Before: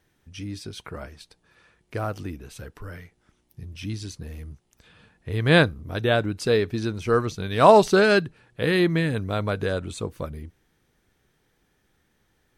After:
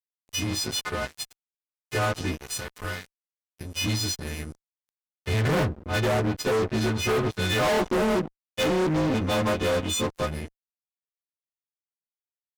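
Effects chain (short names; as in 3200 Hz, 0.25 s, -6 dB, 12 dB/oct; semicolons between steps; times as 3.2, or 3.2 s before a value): frequency quantiser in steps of 3 st; treble ducked by the level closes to 720 Hz, closed at -17.5 dBFS; 7.81–10.09 comb 3.7 ms, depth 62%; fuzz box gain 31 dB, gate -39 dBFS; gain -8 dB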